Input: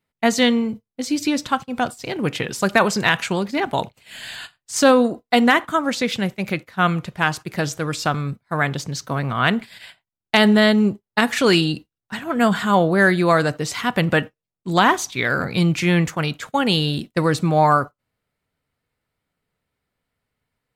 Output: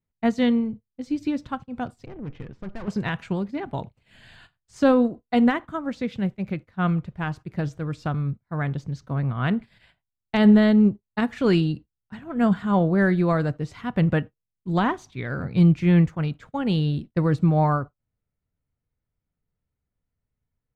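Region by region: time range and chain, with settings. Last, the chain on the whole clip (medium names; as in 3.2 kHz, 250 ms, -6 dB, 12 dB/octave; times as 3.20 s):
2.06–2.88 s: low-pass 2.5 kHz + valve stage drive 24 dB, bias 0.75
whole clip: RIAA curve playback; upward expansion 1.5:1, over -20 dBFS; trim -6 dB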